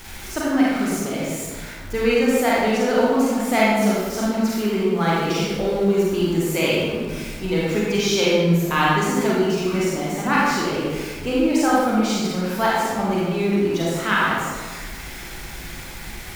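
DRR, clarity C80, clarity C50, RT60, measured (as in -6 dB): -6.5 dB, 0.0 dB, -3.0 dB, 1.5 s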